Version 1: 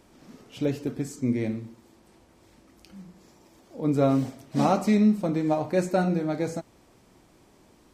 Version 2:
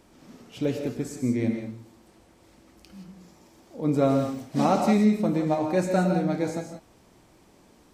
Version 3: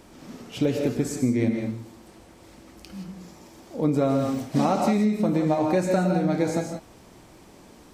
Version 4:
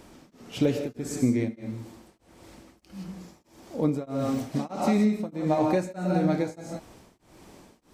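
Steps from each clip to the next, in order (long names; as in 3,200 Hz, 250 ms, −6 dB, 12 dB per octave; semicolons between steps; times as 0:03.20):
reverb whose tail is shaped and stops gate 200 ms rising, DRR 5 dB
downward compressor 12 to 1, threshold −25 dBFS, peak gain reduction 10.5 dB; level +7 dB
tremolo along a rectified sine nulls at 1.6 Hz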